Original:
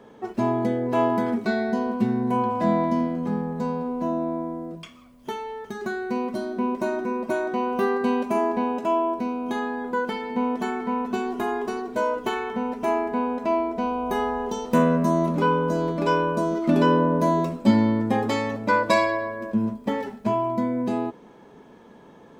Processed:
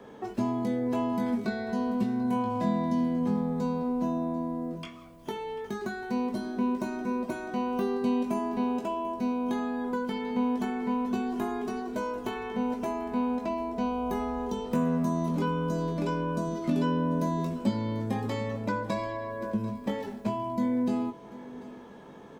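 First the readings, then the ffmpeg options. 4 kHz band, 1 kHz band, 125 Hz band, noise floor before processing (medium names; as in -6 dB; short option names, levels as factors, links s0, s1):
-7.0 dB, -8.5 dB, -4.0 dB, -49 dBFS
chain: -filter_complex "[0:a]acrossover=split=230|3000[s0][s1][s2];[s0]acompressor=threshold=0.0355:ratio=4[s3];[s1]acompressor=threshold=0.0178:ratio=4[s4];[s2]acompressor=threshold=0.00251:ratio=4[s5];[s3][s4][s5]amix=inputs=3:normalize=0,asplit=2[s6][s7];[s7]adelay=20,volume=0.501[s8];[s6][s8]amix=inputs=2:normalize=0,asplit=2[s9][s10];[s10]aecho=0:1:741:0.126[s11];[s9][s11]amix=inputs=2:normalize=0"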